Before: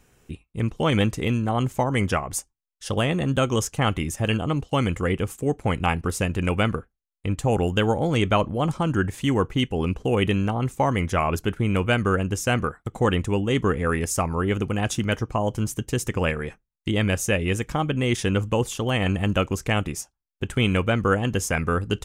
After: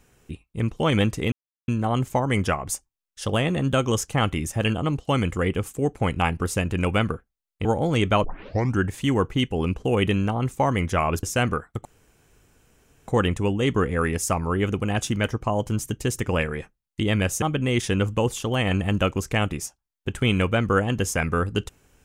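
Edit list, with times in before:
1.32 s: insert silence 0.36 s
7.29–7.85 s: delete
8.44 s: tape start 0.54 s
11.43–12.34 s: delete
12.96 s: insert room tone 1.23 s
17.30–17.77 s: delete

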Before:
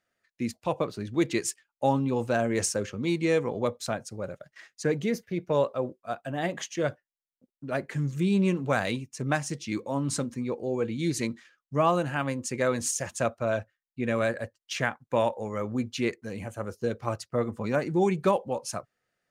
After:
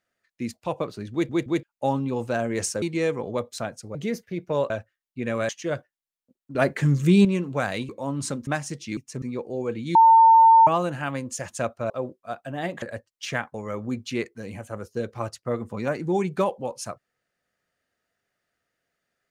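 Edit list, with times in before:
1.12 s: stutter in place 0.17 s, 3 plays
2.82–3.10 s: delete
4.23–4.95 s: delete
5.70–6.62 s: swap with 13.51–14.30 s
7.68–8.38 s: gain +8.5 dB
9.02–9.27 s: swap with 9.77–10.35 s
11.08–11.80 s: bleep 903 Hz -10 dBFS
12.48–12.96 s: delete
15.02–15.41 s: delete

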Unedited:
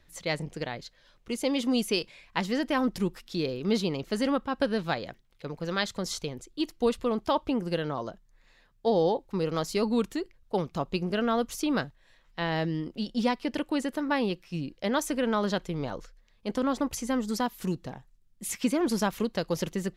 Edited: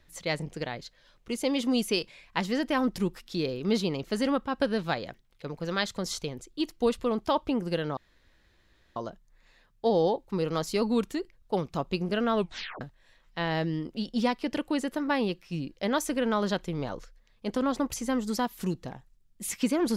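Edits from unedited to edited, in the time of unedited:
7.97 s: insert room tone 0.99 s
11.34 s: tape stop 0.48 s

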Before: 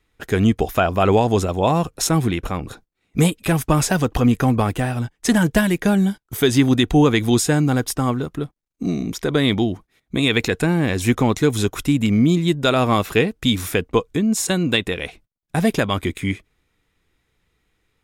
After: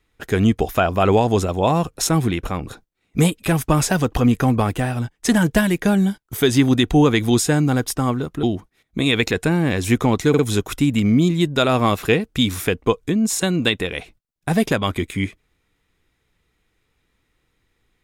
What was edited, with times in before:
8.43–9.60 s: delete
11.46 s: stutter 0.05 s, 3 plays

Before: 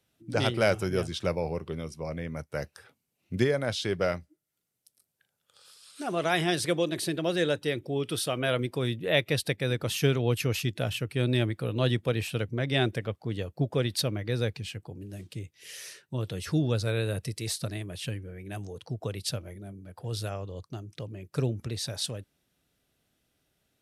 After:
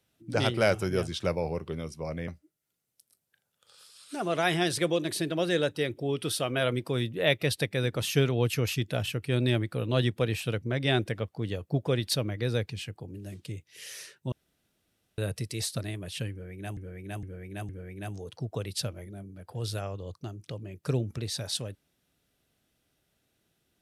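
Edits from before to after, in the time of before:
2.28–4.15 s: delete
16.19–17.05 s: room tone
18.18–18.64 s: loop, 4 plays

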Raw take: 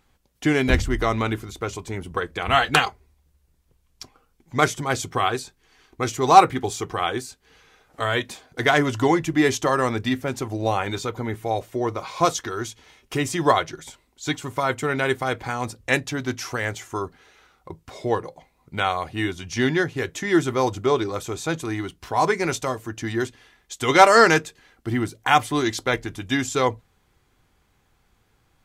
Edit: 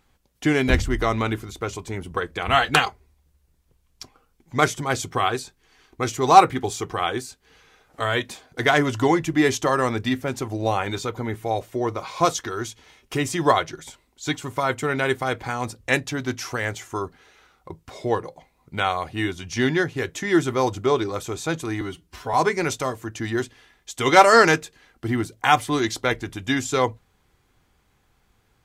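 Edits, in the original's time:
21.81–22.16 s: stretch 1.5×

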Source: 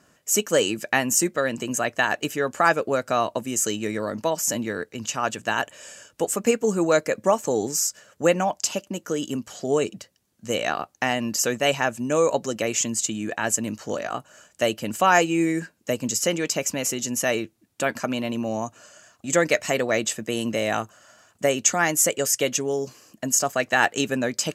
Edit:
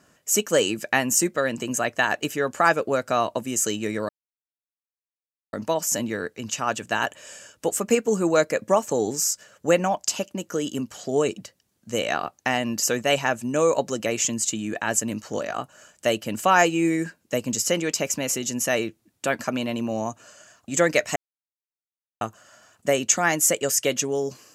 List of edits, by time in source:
4.09 s: insert silence 1.44 s
19.72–20.77 s: mute

